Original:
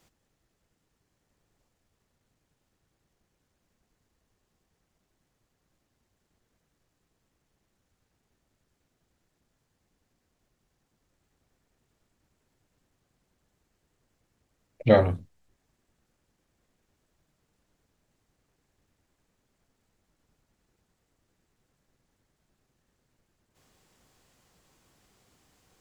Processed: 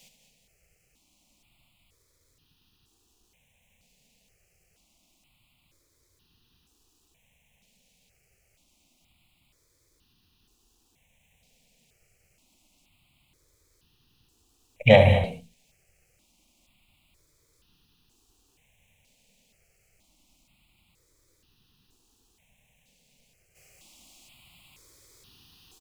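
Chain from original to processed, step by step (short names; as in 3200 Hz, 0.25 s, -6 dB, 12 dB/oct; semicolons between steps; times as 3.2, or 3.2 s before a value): tracing distortion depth 0.021 ms; resonant high shelf 2000 Hz +7 dB, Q 3; echo 75 ms -9 dB; non-linear reverb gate 0.24 s rising, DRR 8 dB; step phaser 2.1 Hz 340–2200 Hz; gain +6 dB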